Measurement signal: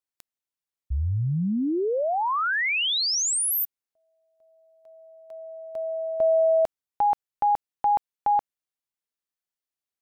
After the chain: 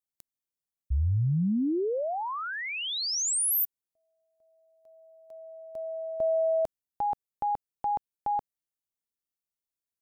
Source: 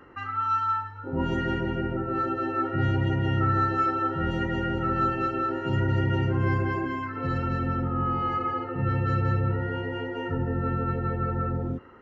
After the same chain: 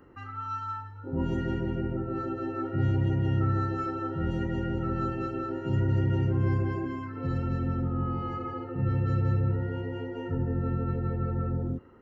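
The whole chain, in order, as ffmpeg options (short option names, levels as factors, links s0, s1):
-af "equalizer=f=1800:w=0.35:g=-10"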